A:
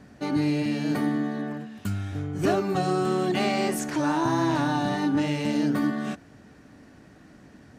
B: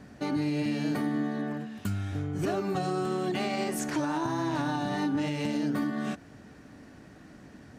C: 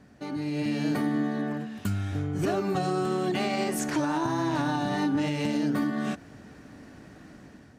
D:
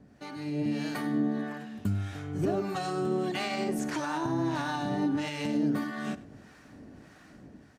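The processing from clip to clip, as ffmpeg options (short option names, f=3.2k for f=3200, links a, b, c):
-filter_complex "[0:a]asplit=2[a][b];[b]acompressor=threshold=-32dB:ratio=6,volume=-1dB[c];[a][c]amix=inputs=2:normalize=0,alimiter=limit=-16dB:level=0:latency=1:release=110,volume=-5dB"
-af "dynaudnorm=f=220:g=5:m=8dB,volume=-5.5dB"
-filter_complex "[0:a]acrossover=split=720[a][b];[a]aeval=exprs='val(0)*(1-0.7/2+0.7/2*cos(2*PI*1.6*n/s))':c=same[c];[b]aeval=exprs='val(0)*(1-0.7/2-0.7/2*cos(2*PI*1.6*n/s))':c=same[d];[c][d]amix=inputs=2:normalize=0,asplit=2[e][f];[f]adelay=99.13,volume=-18dB,highshelf=f=4k:g=-2.23[g];[e][g]amix=inputs=2:normalize=0"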